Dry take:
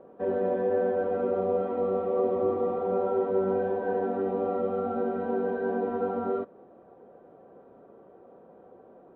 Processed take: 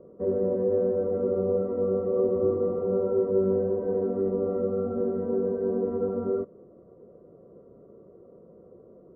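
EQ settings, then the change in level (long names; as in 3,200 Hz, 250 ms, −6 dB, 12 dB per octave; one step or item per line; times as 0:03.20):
moving average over 54 samples
high-frequency loss of the air 160 metres
parametric band 260 Hz −7 dB 0.63 octaves
+8.5 dB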